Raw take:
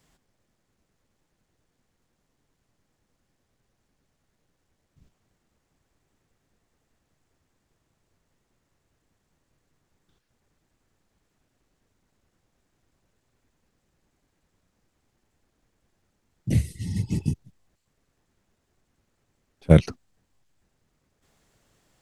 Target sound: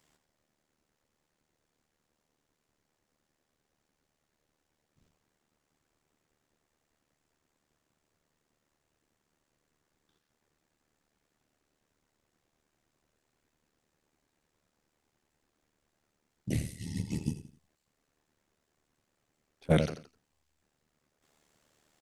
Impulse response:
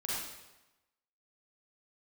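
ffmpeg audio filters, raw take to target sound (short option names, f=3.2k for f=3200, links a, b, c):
-filter_complex "[0:a]asplit=2[a][b];[b]aecho=0:1:85|170|255:0.282|0.0874|0.0271[c];[a][c]amix=inputs=2:normalize=0,tremolo=f=75:d=0.75,lowshelf=f=150:g=-11.5"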